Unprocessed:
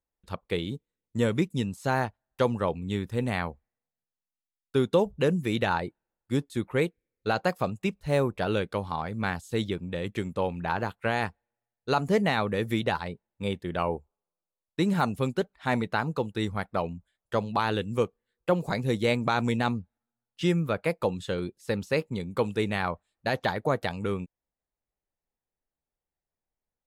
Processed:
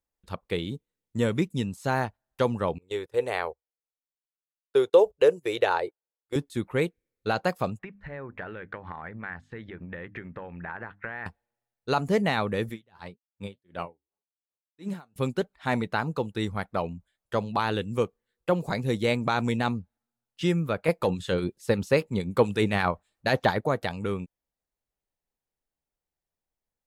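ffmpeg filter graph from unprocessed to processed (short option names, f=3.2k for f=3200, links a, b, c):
-filter_complex "[0:a]asettb=1/sr,asplit=3[a][b][c];[a]atrim=end=2.784[d];[b]atrim=start=2.78:end=6.36,asetpts=PTS-STARTPTS,afade=t=in:d=0.004:c=qsin,afade=t=out:st=3.576:d=0.004:c=qsin,lowshelf=f=310:t=q:w=3:g=-12,agate=range=-17dB:threshold=-41dB:ratio=16:release=100:detection=peak[e];[c]atrim=start=6.356[f];[d][e]acrossfade=d=0.004:c1=hsin:c2=qsin[g];[g][f]acrossfade=d=0.004:c1=qsin:c2=hsin,asettb=1/sr,asplit=3[h][i][j];[h]atrim=end=7.794[k];[i]atrim=start=7.79:end=11.26,asetpts=PTS-STARTPTS,afade=t=in:d=0.004:c=qsin,afade=t=out:st=3.466:d=0.004:c=qsin,acompressor=threshold=-35dB:ratio=20:attack=3.2:release=140:knee=1:detection=peak,lowpass=f=1.8k:t=q:w=4,bandreject=f=50:t=h:w=6,bandreject=f=100:t=h:w=6,bandreject=f=150:t=h:w=6,bandreject=f=200:t=h:w=6,bandreject=f=250:t=h:w=6,bandreject=f=300:t=h:w=6[l];[j]atrim=start=11.256[m];[k][l]acrossfade=d=0.004:c1=hsin:c2=qsin[n];[n][m]acrossfade=d=0.004:c1=qsin:c2=hsin,asettb=1/sr,asplit=3[o][p][q];[o]atrim=end=12.694[r];[p]atrim=start=12.69:end=15.16,asetpts=PTS-STARTPTS,afade=t=in:d=0.004:c=qsin,afade=t=out:st=2.466:d=0.004:c=qsin,highpass=57,flanger=delay=2.7:depth=8.4:regen=68:speed=1.9:shape=triangular,aeval=exprs='val(0)*pow(10,-35*(0.5-0.5*cos(2*PI*2.7*n/s))/20)':c=same[s];[q]atrim=start=15.156[t];[r][s]acrossfade=d=0.004:c1=hsin:c2=qsin[u];[u][t]acrossfade=d=0.004:c1=qsin:c2=hsin,asettb=1/sr,asplit=3[v][w][x];[v]atrim=end=20.884[y];[w]atrim=start=20.88:end=23.61,asetpts=PTS-STARTPTS,afade=t=in:d=0.004:c=qsin,afade=t=out:st=2.726:d=0.004:c=qsin,acontrast=54,acrossover=split=1400[z][aa];[z]aeval=exprs='val(0)*(1-0.5/2+0.5/2*cos(2*PI*8.5*n/s))':c=same[ab];[aa]aeval=exprs='val(0)*(1-0.5/2-0.5/2*cos(2*PI*8.5*n/s))':c=same[ac];[ab][ac]amix=inputs=2:normalize=0[ad];[x]atrim=start=23.606[ae];[y][ad]acrossfade=d=0.004:c1=hsin:c2=qsin[af];[af][ae]acrossfade=d=0.004:c1=qsin:c2=hsin"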